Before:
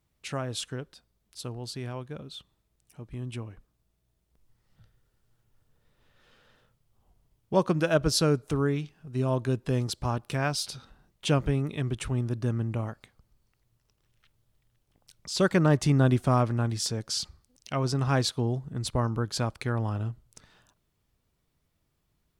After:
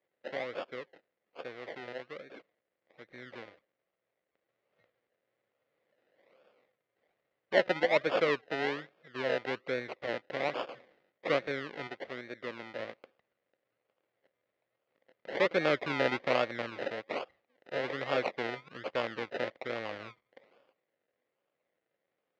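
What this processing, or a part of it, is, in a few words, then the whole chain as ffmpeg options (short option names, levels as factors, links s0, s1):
circuit-bent sampling toy: -filter_complex "[0:a]asettb=1/sr,asplit=3[s0][s1][s2];[s0]atrim=end=11.874[s3];[s1]atrim=start=11.87:end=12.79,asetpts=PTS-STARTPTS,afade=t=in:d=0.004:c=qsin,afade=t=out:st=0.916:d=0.004:c=qsin,lowshelf=f=170:g=-10[s4];[s2]atrim=start=12.786[s5];[s3][s4]acrossfade=d=0.004:c1=hsin:c2=qsin[s6];[s6][s5]acrossfade=d=0.004:c1=qsin:c2=hsin,acrusher=samples=31:mix=1:aa=0.000001:lfo=1:lforange=18.6:lforate=1.2,highpass=410,equalizer=f=530:t=q:w=4:g=9,equalizer=f=930:t=q:w=4:g=-5,equalizer=f=2000:t=q:w=4:g=8,lowpass=f=4100:w=0.5412,lowpass=f=4100:w=1.3066,volume=0.668"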